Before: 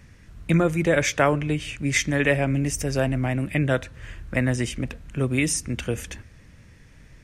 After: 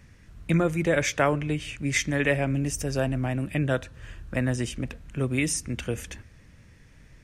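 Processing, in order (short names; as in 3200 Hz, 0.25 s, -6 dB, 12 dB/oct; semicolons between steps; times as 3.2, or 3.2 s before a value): 2.48–4.83 bell 2100 Hz -7.5 dB 0.21 oct; gain -3 dB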